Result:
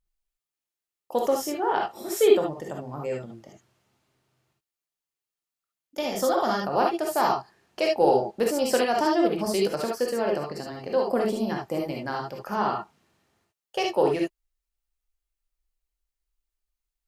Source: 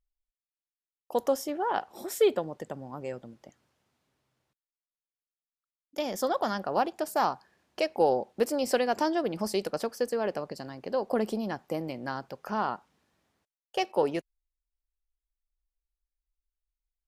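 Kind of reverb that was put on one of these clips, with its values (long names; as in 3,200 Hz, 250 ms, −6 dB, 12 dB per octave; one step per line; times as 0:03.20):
reverb whose tail is shaped and stops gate 90 ms rising, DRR −1 dB
level +1.5 dB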